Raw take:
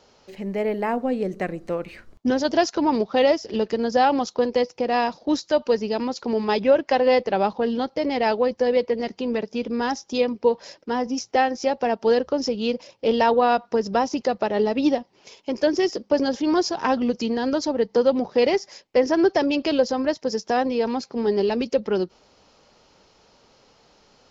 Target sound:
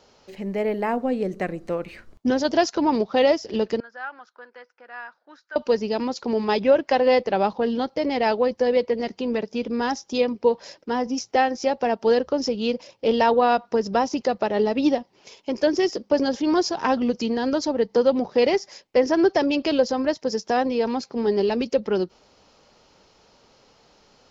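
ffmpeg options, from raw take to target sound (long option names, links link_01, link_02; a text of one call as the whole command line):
ffmpeg -i in.wav -filter_complex "[0:a]asettb=1/sr,asplit=3[link_01][link_02][link_03];[link_01]atrim=end=3.804[link_04];[link_02]atrim=start=3.8:end=5.56,asetpts=PTS-STARTPTS,afade=type=in:duration=0.004:curve=qsin,afade=type=out:start_time=1.756:duration=0.004:curve=qsin,bandpass=frequency=1500:width_type=q:width=7.2:csg=0[link_05];[link_03]atrim=start=5.556[link_06];[link_04][link_05]acrossfade=duration=0.004:curve1=hsin:curve2=qsin[link_07];[link_07][link_06]acrossfade=duration=0.004:curve1=qsin:curve2=hsin" out.wav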